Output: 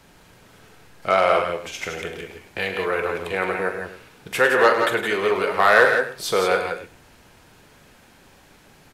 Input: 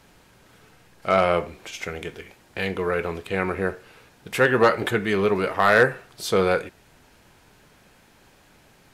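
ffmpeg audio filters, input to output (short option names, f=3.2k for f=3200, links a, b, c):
-filter_complex "[0:a]aecho=1:1:43|103|161|173|268:0.282|0.299|0.335|0.398|0.106,acrossover=split=380|2000[a][b][c];[a]acompressor=threshold=-39dB:ratio=6[d];[d][b][c]amix=inputs=3:normalize=0,volume=2dB"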